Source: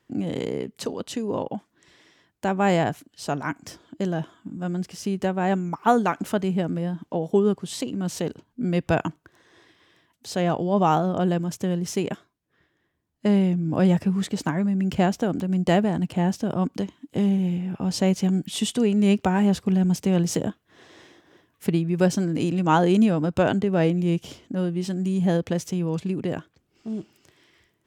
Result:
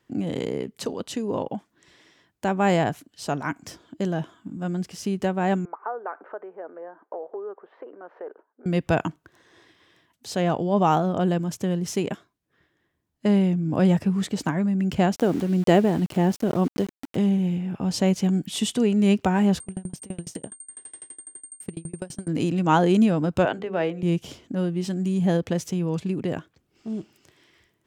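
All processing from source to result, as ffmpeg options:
-filter_complex "[0:a]asettb=1/sr,asplit=3[a][b][c];[a]atrim=end=5.654[d];[b]atrim=start=5.65:end=8.66,asetpts=PTS-STARTPTS,afade=t=in:d=0.004:c=qsin,afade=t=out:st=3.006:d=0.004:c=qsin,acompressor=threshold=-26dB:ratio=5:attack=3.2:release=140:knee=1:detection=peak,asuperpass=centerf=820:order=8:qfactor=0.65[e];[c]atrim=start=8.656[f];[d][e]acrossfade=d=0.004:c1=hsin:c2=qsin[g];[g][f]acrossfade=d=0.004:c1=qsin:c2=hsin,asettb=1/sr,asplit=3[h][i][j];[h]atrim=end=15.164[k];[i]atrim=start=15.16:end=17.16,asetpts=PTS-STARTPTS,afade=t=in:d=0.004:c=qsin,afade=t=out:st=1.996:d=0.004:c=qsin,equalizer=f=390:w=1.6:g=6,aeval=exprs='val(0)*gte(abs(val(0)),0.015)':c=same,acompressor=mode=upward:threshold=-34dB:ratio=2.5:attack=3.2:release=140:knee=2.83:detection=peak[l];[j]atrim=start=17.156[m];[k][l]acrossfade=d=0.004:c1=hsin:c2=qsin[n];[n][m]acrossfade=d=0.004:c1=qsin:c2=hsin,asettb=1/sr,asplit=3[o][p][q];[o]atrim=end=19.604[r];[p]atrim=start=19.6:end=22.28,asetpts=PTS-STARTPTS,afade=t=in:d=0.004:c=qsin,afade=t=out:st=2.676:d=0.004:c=qsin,aeval=exprs='val(0)+0.0251*sin(2*PI*8700*n/s)':c=same,acompressor=threshold=-23dB:ratio=5:attack=3.2:release=140:knee=1:detection=peak,aeval=exprs='val(0)*pow(10,-30*if(lt(mod(12*n/s,1),2*abs(12)/1000),1-mod(12*n/s,1)/(2*abs(12)/1000),(mod(12*n/s,1)-2*abs(12)/1000)/(1-2*abs(12)/1000))/20)':c=same[s];[q]atrim=start=22.276[t];[r][s]acrossfade=d=0.004:c1=hsin:c2=qsin[u];[u][t]acrossfade=d=0.004:c1=qsin:c2=hsin,asettb=1/sr,asplit=3[v][w][x];[v]atrim=end=23.454[y];[w]atrim=start=23.45:end=24.03,asetpts=PTS-STARTPTS,afade=t=in:d=0.004:c=qsin,afade=t=out:st=0.576:d=0.004:c=qsin,acrossover=split=370 3700:gain=0.224 1 0.224[z][aa][ab];[z][aa][ab]amix=inputs=3:normalize=0,bandreject=f=50:t=h:w=6,bandreject=f=100:t=h:w=6,bandreject=f=150:t=h:w=6,bandreject=f=200:t=h:w=6,bandreject=f=250:t=h:w=6,bandreject=f=300:t=h:w=6,bandreject=f=350:t=h:w=6,bandreject=f=400:t=h:w=6,bandreject=f=450:t=h:w=6,bandreject=f=500:t=h:w=6[ac];[x]atrim=start=24.026[ad];[y][ac]acrossfade=d=0.004:c1=hsin:c2=qsin[ae];[ae][ad]acrossfade=d=0.004:c1=qsin:c2=hsin"

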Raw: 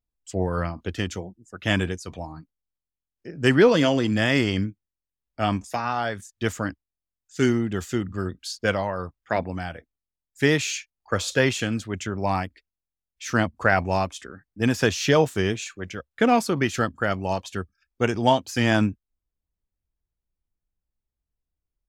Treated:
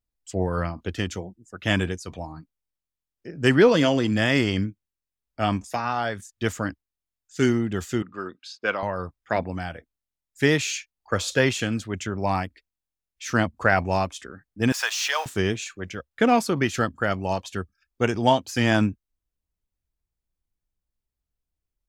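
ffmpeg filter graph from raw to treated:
-filter_complex "[0:a]asettb=1/sr,asplit=3[a][b][c];[a]atrim=end=8.024[d];[b]atrim=start=8.02:end=8.83,asetpts=PTS-STARTPTS,afade=t=in:d=0.004:c=qsin,afade=t=out:st=0.806:d=0.004:c=qsin,highpass=380,lowpass=3.5k,aecho=1:1:0.8:0.35,atrim=end_sample=35721[e];[c]atrim=start=8.826[f];[d][e]acrossfade=d=0.004:c1=hsin:c2=qsin[g];[g][f]acrossfade=d=0.004:c1=qsin:c2=hsin,asettb=1/sr,asplit=3[h][i][j];[h]atrim=end=14.724[k];[i]atrim=start=14.72:end=15.26,asetpts=PTS-STARTPTS,afade=t=in:d=0.004:c=qsin,afade=t=out:st=0.536:d=0.004:c=qsin,aeval=exprs='val(0)+0.5*0.0224*sgn(val(0))':c=same,highpass=f=830:w=0.5412,highpass=f=830:w=1.3066[l];[j]atrim=start=15.256[m];[k][l]acrossfade=d=0.004:c1=hsin:c2=qsin[n];[n][m]acrossfade=d=0.004:c1=qsin:c2=hsin"

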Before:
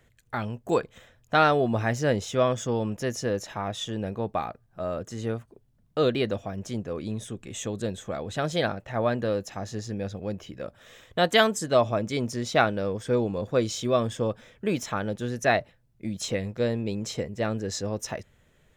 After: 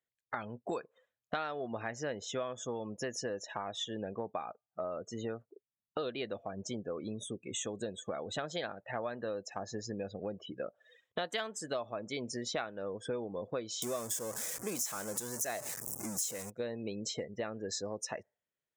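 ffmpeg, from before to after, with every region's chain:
-filter_complex "[0:a]asettb=1/sr,asplit=3[a][b][c];[a]atrim=end=13.824[d];[b]atrim=start=13.82:end=16.5,asetpts=PTS-STARTPTS,afade=t=in:d=0.004:c=qsin,afade=t=out:st=2.676:d=0.004:c=qsin,aeval=exprs='val(0)+0.5*0.0447*sgn(val(0))':c=same,highshelf=f=5.1k:t=q:w=1.5:g=12.5[e];[c]atrim=start=16.496[f];[d][e]acrossfade=d=0.004:c1=hsin:c2=qsin[g];[g][f]acrossfade=d=0.004:c1=qsin:c2=hsin,highpass=f=440:p=1,afftdn=nr=33:nf=-42,acompressor=threshold=-40dB:ratio=6,volume=4.5dB"

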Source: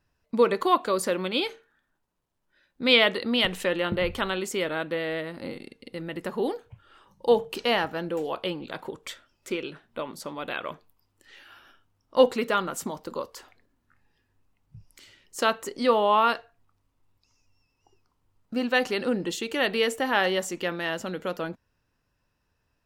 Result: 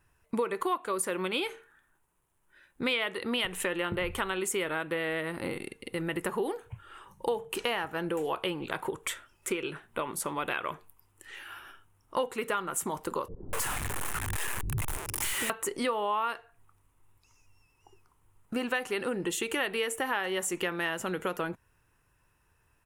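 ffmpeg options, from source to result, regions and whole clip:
-filter_complex "[0:a]asettb=1/sr,asplit=3[a][b][c];[a]atrim=end=13.284[d];[b]atrim=start=13.28:end=15.5,asetpts=PTS-STARTPTS,afade=t=in:d=0.004:c=qsin,afade=t=out:st=2.216:d=0.004:c=qsin,aeval=exprs='val(0)+0.5*0.0376*sgn(val(0))':c=same,acrossover=split=330[e][f];[f]adelay=250[g];[e][g]amix=inputs=2:normalize=0,atrim=end_sample=97902[h];[c]atrim=start=15.496[i];[d][h]acrossfade=d=0.004:c1=hsin:c2=qsin[j];[j][i]acrossfade=d=0.004:c1=qsin:c2=hsin,firequalizer=gain_entry='entry(130,0);entry(240,-7);entry(370,1);entry(570,-5);entry(910,2);entry(2600,1);entry(4600,-9);entry(6700,1);entry(9700,10);entry(14000,2)':delay=0.05:min_phase=1,acompressor=threshold=-33dB:ratio=6,volume=5dB"

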